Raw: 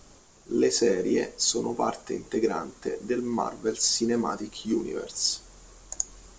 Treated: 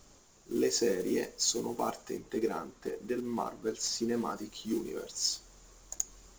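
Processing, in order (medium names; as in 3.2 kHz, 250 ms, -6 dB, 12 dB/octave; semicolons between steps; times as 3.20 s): block-companded coder 5-bit; treble shelf 5.2 kHz +3.5 dB, from 2.17 s -5 dB, from 4.36 s +3 dB; trim -6.5 dB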